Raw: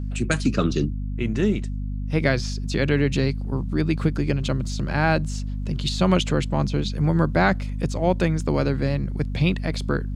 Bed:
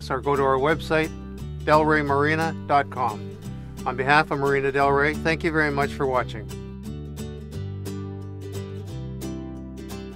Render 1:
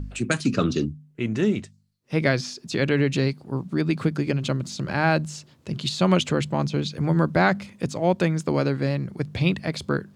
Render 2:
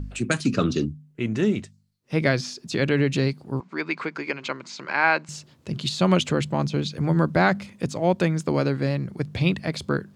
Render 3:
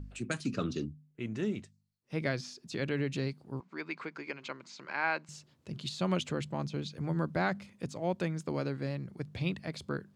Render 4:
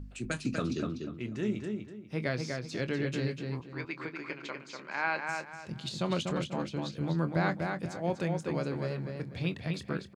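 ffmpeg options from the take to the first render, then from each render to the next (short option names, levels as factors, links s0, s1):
-af "bandreject=f=50:t=h:w=4,bandreject=f=100:t=h:w=4,bandreject=f=150:t=h:w=4,bandreject=f=200:t=h:w=4,bandreject=f=250:t=h:w=4"
-filter_complex "[0:a]asettb=1/sr,asplit=3[s0][s1][s2];[s0]atrim=end=3.604[s3];[s1]atrim=start=3.6:end=5.29,asetpts=PTS-STARTPTS,afade=t=in:d=0.004:c=qsin,afade=t=out:st=1.686:d=0.004:c=qsin,highpass=440,equalizer=f=590:t=q:w=4:g=-4,equalizer=f=1000:t=q:w=4:g=7,equalizer=f=1500:t=q:w=4:g=4,equalizer=f=2200:t=q:w=4:g=9,equalizer=f=3500:t=q:w=4:g=-4,equalizer=f=5700:t=q:w=4:g=-3,lowpass=f=6500:w=0.5412,lowpass=f=6500:w=1.3066[s4];[s2]atrim=start=5.286[s5];[s3][s4]acrossfade=d=0.004:c1=hsin:c2=qsin[s6];[s6][s5]acrossfade=d=0.004:c1=qsin:c2=hsin"
-af "volume=0.266"
-filter_complex "[0:a]asplit=2[s0][s1];[s1]adelay=24,volume=0.251[s2];[s0][s2]amix=inputs=2:normalize=0,asplit=2[s3][s4];[s4]adelay=245,lowpass=f=3700:p=1,volume=0.631,asplit=2[s5][s6];[s6]adelay=245,lowpass=f=3700:p=1,volume=0.31,asplit=2[s7][s8];[s8]adelay=245,lowpass=f=3700:p=1,volume=0.31,asplit=2[s9][s10];[s10]adelay=245,lowpass=f=3700:p=1,volume=0.31[s11];[s3][s5][s7][s9][s11]amix=inputs=5:normalize=0"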